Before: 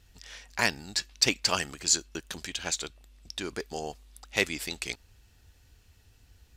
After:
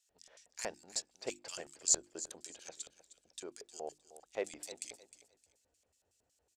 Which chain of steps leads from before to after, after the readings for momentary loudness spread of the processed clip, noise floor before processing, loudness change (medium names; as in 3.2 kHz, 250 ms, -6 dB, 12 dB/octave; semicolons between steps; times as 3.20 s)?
18 LU, -61 dBFS, -9.5 dB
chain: LFO band-pass square 5.4 Hz 560–7700 Hz; hum notches 50/100/150/200/250/300/350 Hz; feedback delay 309 ms, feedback 25%, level -15 dB; trim -2 dB